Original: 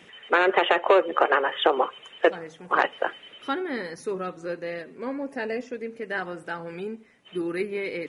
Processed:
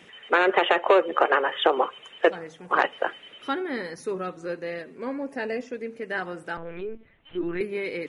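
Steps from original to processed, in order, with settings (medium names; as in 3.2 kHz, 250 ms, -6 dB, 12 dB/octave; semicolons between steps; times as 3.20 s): 6.57–7.61 s: LPC vocoder at 8 kHz pitch kept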